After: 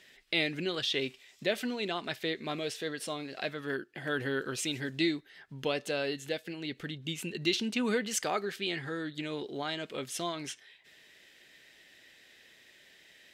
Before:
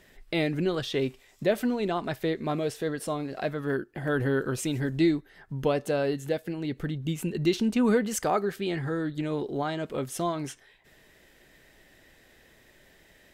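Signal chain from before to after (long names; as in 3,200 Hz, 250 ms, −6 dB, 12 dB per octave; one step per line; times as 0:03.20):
meter weighting curve D
level −6.5 dB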